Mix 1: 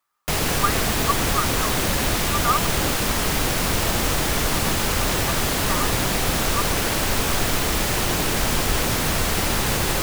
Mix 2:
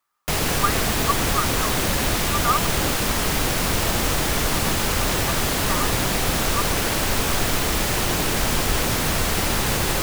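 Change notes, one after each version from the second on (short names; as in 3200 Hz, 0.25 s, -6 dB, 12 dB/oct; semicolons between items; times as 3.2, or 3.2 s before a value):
none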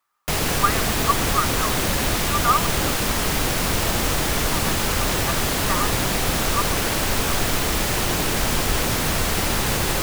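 reverb: on, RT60 0.35 s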